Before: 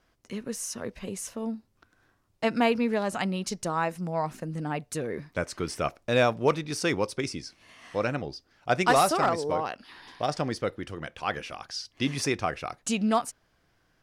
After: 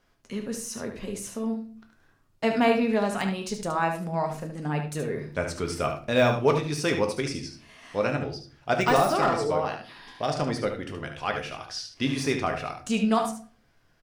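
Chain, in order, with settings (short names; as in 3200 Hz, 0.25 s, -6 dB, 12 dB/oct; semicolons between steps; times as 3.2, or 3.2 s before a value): de-esser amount 65%; echo 73 ms -8 dB; on a send at -5 dB: reverb RT60 0.40 s, pre-delay 4 ms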